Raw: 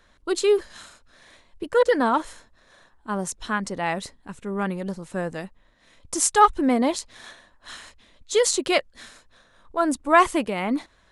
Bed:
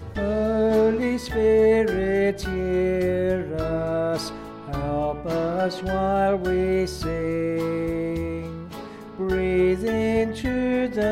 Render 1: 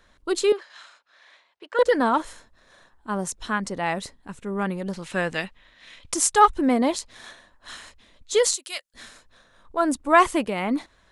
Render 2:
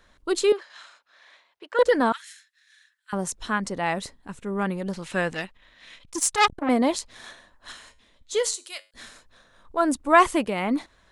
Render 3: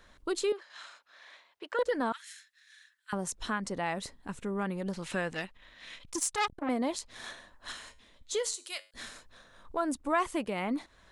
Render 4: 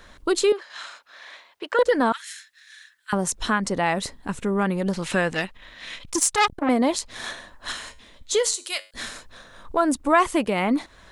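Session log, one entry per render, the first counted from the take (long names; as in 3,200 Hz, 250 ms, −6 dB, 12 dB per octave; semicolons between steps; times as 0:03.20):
0:00.52–0:01.79: band-pass filter 790–4,300 Hz; 0:04.93–0:06.14: parametric band 2,800 Hz +14 dB 2.1 octaves; 0:08.54–0:08.94: first difference
0:02.12–0:03.13: Chebyshev high-pass filter 1,700 Hz, order 4; 0:05.33–0:06.69: saturating transformer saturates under 2,800 Hz; 0:07.72–0:08.91: tuned comb filter 50 Hz, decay 0.35 s, harmonics odd, mix 50%
downward compressor 2 to 1, threshold −35 dBFS, peak gain reduction 13.5 dB
level +10.5 dB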